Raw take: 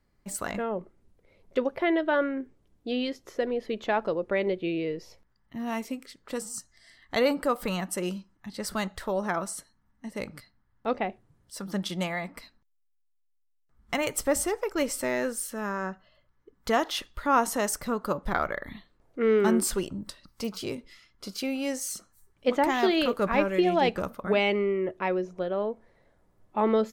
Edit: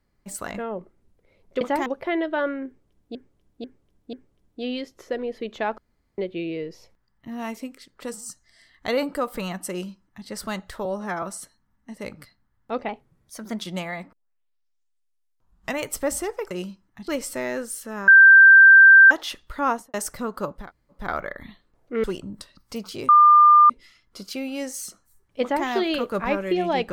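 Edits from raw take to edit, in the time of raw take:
2.41–2.90 s: loop, 4 plays
4.06–4.46 s: room tone
7.98–8.55 s: copy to 14.75 s
9.13–9.38 s: stretch 1.5×
11.04–11.86 s: speed 112%
12.37 s: tape start 1.68 s
15.75–16.78 s: bleep 1.57 kHz -6.5 dBFS
17.34–17.61 s: studio fade out
18.27 s: insert room tone 0.41 s, crossfade 0.24 s
19.30–19.72 s: delete
20.77 s: add tone 1.2 kHz -9 dBFS 0.61 s
22.49–22.74 s: copy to 1.61 s

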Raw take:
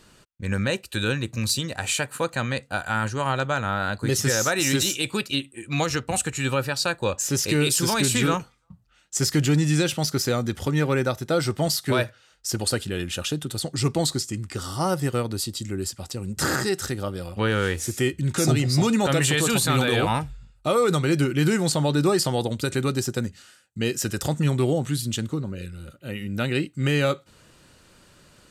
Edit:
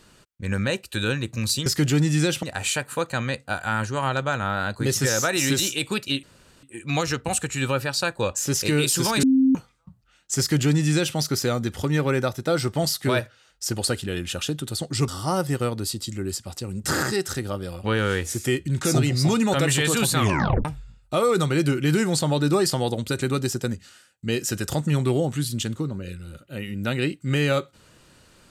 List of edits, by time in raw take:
5.46 s: insert room tone 0.40 s
8.06–8.38 s: bleep 264 Hz -14 dBFS
9.22–9.99 s: copy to 1.66 s
13.91–14.61 s: delete
19.71 s: tape stop 0.47 s

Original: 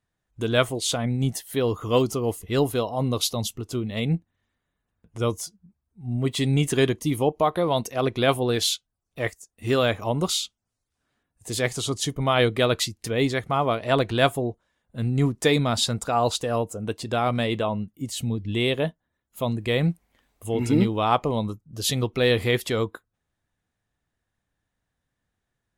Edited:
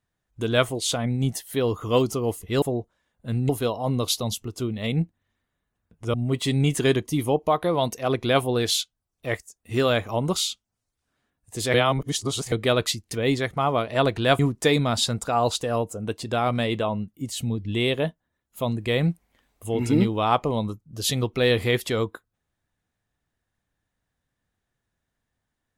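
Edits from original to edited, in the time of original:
5.27–6.07 s: delete
11.67–12.45 s: reverse
14.32–15.19 s: move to 2.62 s

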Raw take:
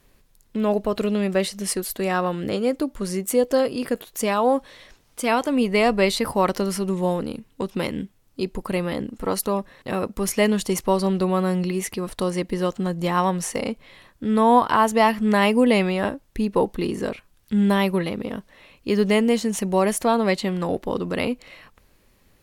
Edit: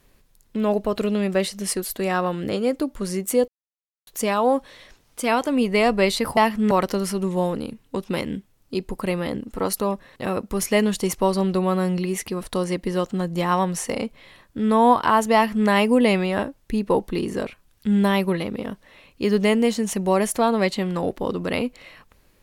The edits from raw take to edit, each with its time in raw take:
3.48–4.07 s: mute
15.00–15.34 s: copy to 6.37 s

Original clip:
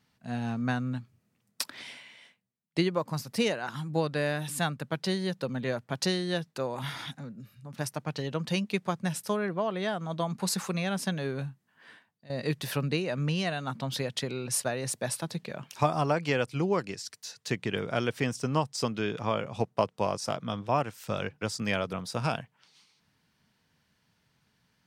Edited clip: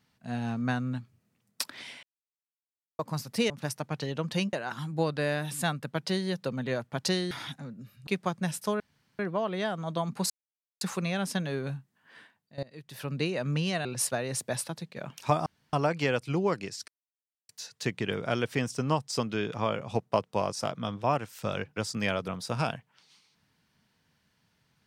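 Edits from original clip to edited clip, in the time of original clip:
2.03–2.99 s: mute
6.28–6.90 s: delete
7.66–8.69 s: move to 3.50 s
9.42 s: insert room tone 0.39 s
10.53 s: insert silence 0.51 s
12.35–12.98 s: fade in quadratic, from -21 dB
13.57–14.38 s: delete
15.09–15.49 s: fade out, to -8.5 dB
15.99 s: insert room tone 0.27 s
17.14 s: insert silence 0.61 s

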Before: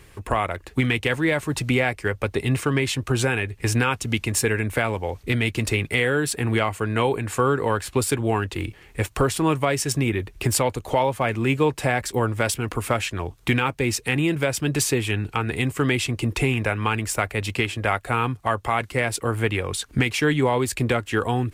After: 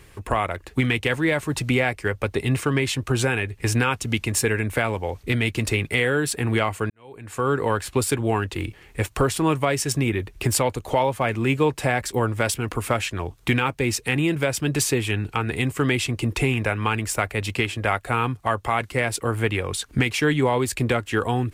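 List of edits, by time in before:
6.90–7.54 s: fade in quadratic

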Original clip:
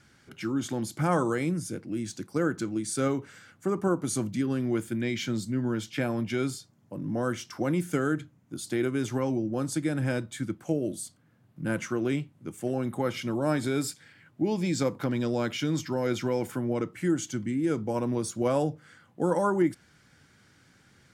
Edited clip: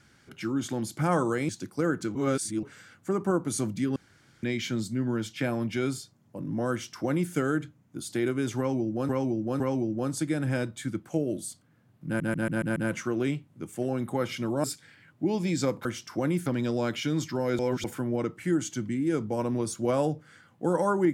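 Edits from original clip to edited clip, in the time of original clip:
1.49–2.06 s: delete
2.72–3.20 s: reverse
4.53–5.00 s: room tone
7.28–7.89 s: copy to 15.03 s
9.15–9.66 s: loop, 3 plays
11.61 s: stutter 0.14 s, 6 plays
13.49–13.82 s: delete
16.16–16.41 s: reverse

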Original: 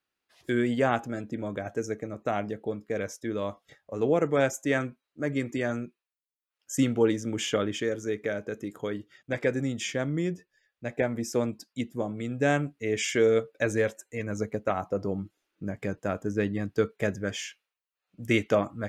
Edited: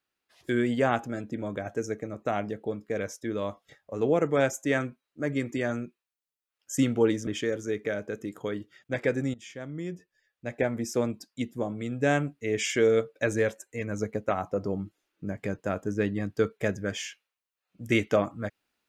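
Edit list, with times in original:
7.27–7.66 s: delete
9.73–11.00 s: fade in, from -17 dB

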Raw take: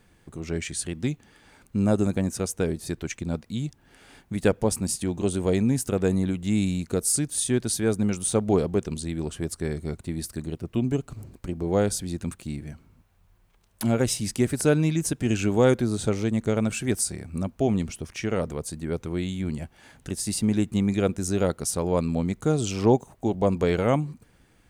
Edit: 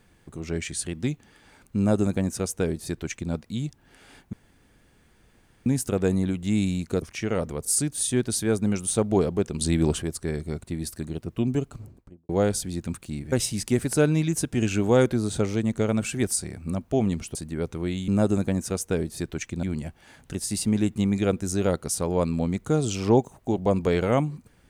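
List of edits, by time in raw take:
1.77–3.32 s: copy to 19.39 s
4.33–5.66 s: room tone
8.98–9.39 s: gain +8 dB
11.00–11.66 s: studio fade out
12.69–14.00 s: delete
18.03–18.66 s: move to 7.02 s

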